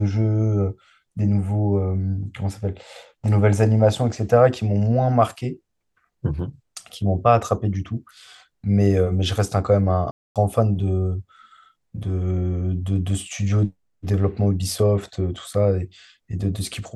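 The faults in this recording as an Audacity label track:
10.110000	10.360000	gap 0.247 s

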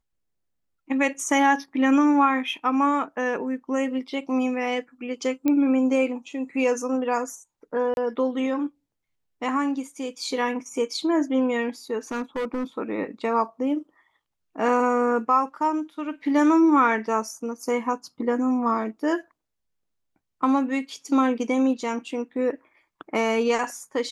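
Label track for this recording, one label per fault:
5.480000	5.480000	pop -11 dBFS
7.940000	7.970000	gap 31 ms
12.110000	12.640000	clipped -24 dBFS

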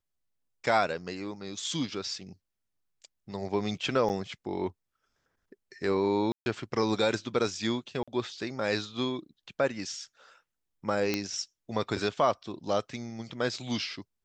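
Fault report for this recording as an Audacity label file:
4.090000	4.100000	gap 7.5 ms
6.320000	6.460000	gap 0.141 s
8.030000	8.080000	gap 46 ms
11.140000	11.140000	pop -13 dBFS

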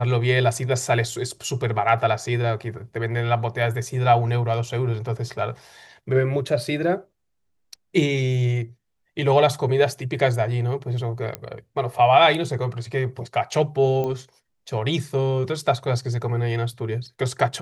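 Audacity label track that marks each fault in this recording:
11.350000	11.350000	pop -12 dBFS
14.040000	14.040000	pop -16 dBFS

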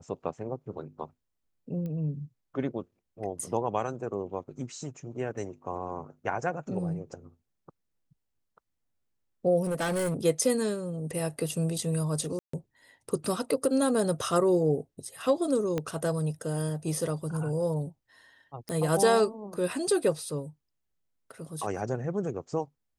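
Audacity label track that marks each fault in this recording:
1.860000	1.860000	pop -27 dBFS
9.620000	10.150000	clipped -26 dBFS
12.390000	12.530000	gap 0.144 s
15.780000	15.780000	pop -17 dBFS
18.690000	18.690000	pop -22 dBFS

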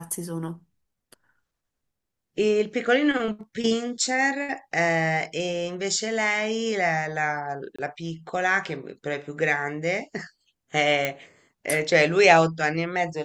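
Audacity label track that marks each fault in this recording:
7.760000	7.790000	gap 25 ms
11.050000	11.050000	pop -10 dBFS

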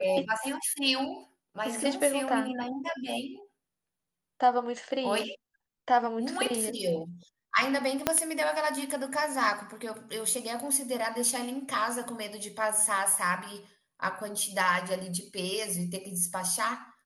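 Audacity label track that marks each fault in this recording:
8.070000	8.070000	pop -7 dBFS

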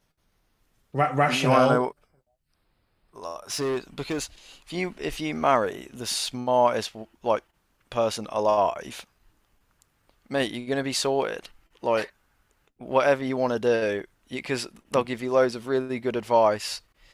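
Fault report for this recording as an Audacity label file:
3.510000	4.240000	clipped -23.5 dBFS

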